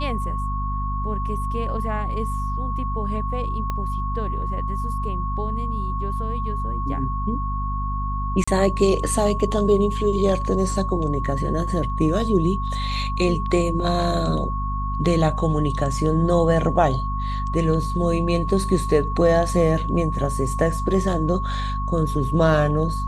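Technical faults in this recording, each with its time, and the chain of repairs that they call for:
mains hum 50 Hz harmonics 5 −26 dBFS
whistle 1,100 Hz −28 dBFS
0:03.70: click −14 dBFS
0:08.44–0:08.47: drop-out 35 ms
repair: click removal
notch filter 1,100 Hz, Q 30
hum removal 50 Hz, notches 5
repair the gap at 0:08.44, 35 ms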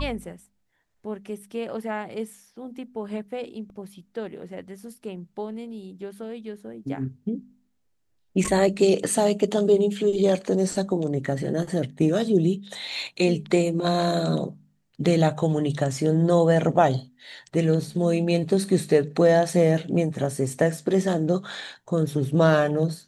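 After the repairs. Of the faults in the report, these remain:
0:03.70: click

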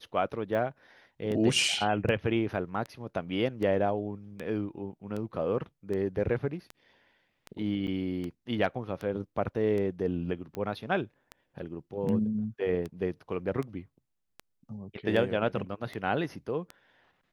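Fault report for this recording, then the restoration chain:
scratch tick 78 rpm −24 dBFS
0:07.87–0:07.88: drop-out 6.9 ms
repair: click removal
repair the gap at 0:07.87, 6.9 ms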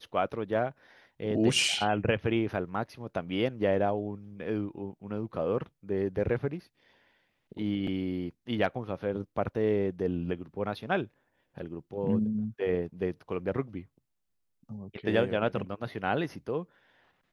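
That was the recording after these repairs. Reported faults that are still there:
none of them is left

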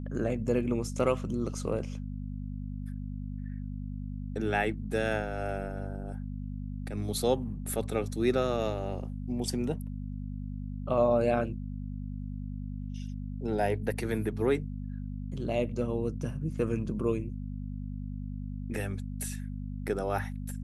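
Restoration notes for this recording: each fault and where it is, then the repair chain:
mains hum 50 Hz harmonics 5 −37 dBFS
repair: hum removal 50 Hz, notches 5

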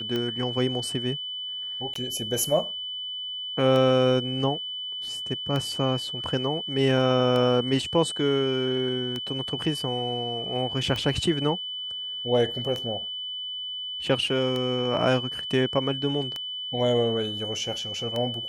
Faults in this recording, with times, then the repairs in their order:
scratch tick 33 1/3 rpm −16 dBFS
whistle 3,000 Hz −31 dBFS
0:01.94–0:01.95: drop-out 14 ms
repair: click removal
notch filter 3,000 Hz, Q 30
repair the gap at 0:01.94, 14 ms

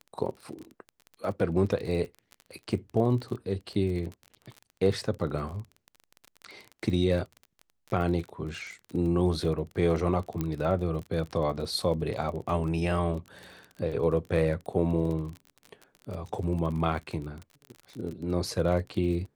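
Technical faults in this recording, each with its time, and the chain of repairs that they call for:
surface crackle 30 per second −35 dBFS
0:10.41: click −17 dBFS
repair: click removal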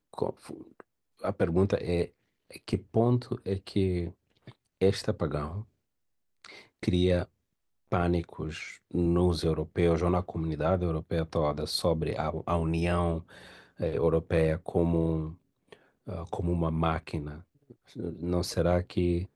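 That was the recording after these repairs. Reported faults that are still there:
none of them is left

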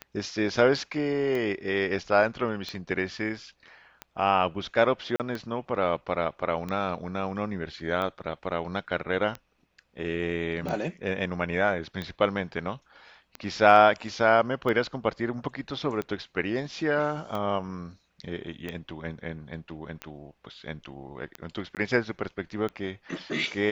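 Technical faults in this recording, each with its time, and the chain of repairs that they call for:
scratch tick 45 rpm −20 dBFS
0:05.16–0:05.20: drop-out 38 ms
0:21.75–0:21.77: drop-out 18 ms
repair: click removal
repair the gap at 0:05.16, 38 ms
repair the gap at 0:21.75, 18 ms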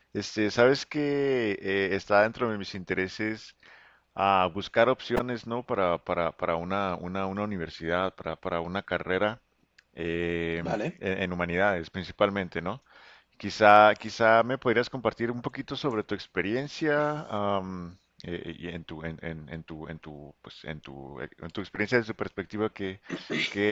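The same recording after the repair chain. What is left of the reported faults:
none of them is left

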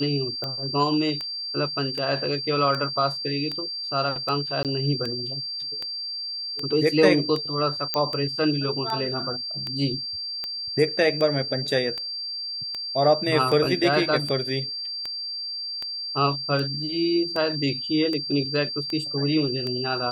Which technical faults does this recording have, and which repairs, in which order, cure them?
scratch tick 78 rpm −17 dBFS
whistle 4,700 Hz −29 dBFS
0:04.63–0:04.65: drop-out 18 ms
0:07.94: click −9 dBFS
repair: click removal
notch filter 4,700 Hz, Q 30
repair the gap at 0:04.63, 18 ms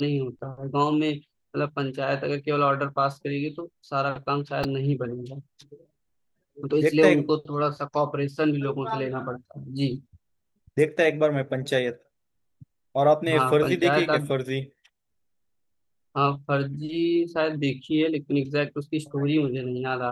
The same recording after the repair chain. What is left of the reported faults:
none of them is left

